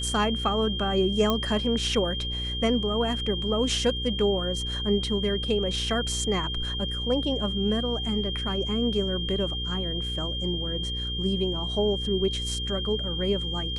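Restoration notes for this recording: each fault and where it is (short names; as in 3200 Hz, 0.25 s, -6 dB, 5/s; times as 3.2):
hum 60 Hz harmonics 8 -33 dBFS
tone 3200 Hz -31 dBFS
1.3 pop -11 dBFS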